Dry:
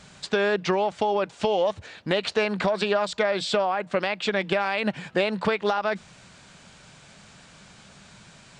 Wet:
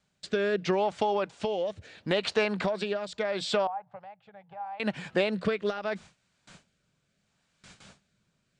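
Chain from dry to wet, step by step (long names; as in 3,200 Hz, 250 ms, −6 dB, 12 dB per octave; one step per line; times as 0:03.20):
rotating-speaker cabinet horn 0.75 Hz
noise gate with hold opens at −40 dBFS
speech leveller 2 s
0:03.67–0:04.80: pair of resonant band-passes 310 Hz, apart 2.8 octaves
level −3 dB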